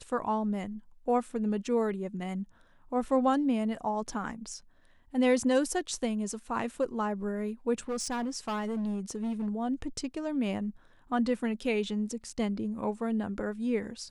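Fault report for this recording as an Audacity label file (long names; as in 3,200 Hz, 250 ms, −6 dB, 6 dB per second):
7.790000	9.480000	clipping −29 dBFS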